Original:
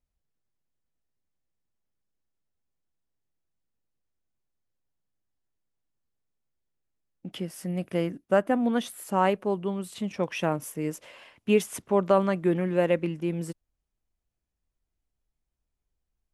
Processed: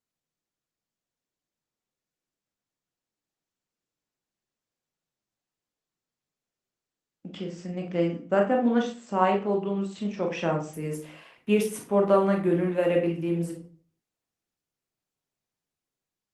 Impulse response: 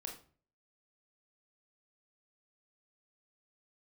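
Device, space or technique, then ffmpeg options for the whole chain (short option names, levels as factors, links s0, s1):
far-field microphone of a smart speaker: -filter_complex "[1:a]atrim=start_sample=2205[s0];[0:a][s0]afir=irnorm=-1:irlink=0,highpass=f=120:w=0.5412,highpass=f=120:w=1.3066,dynaudnorm=f=840:g=3:m=1.5" -ar 48000 -c:a libopus -b:a 20k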